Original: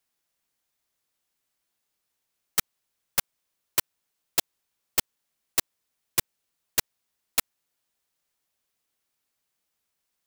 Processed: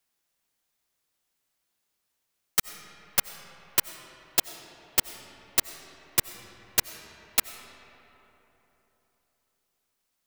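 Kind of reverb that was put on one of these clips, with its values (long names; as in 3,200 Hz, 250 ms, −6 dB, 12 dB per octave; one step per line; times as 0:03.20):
comb and all-pass reverb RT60 3.7 s, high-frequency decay 0.5×, pre-delay 50 ms, DRR 11.5 dB
level +1 dB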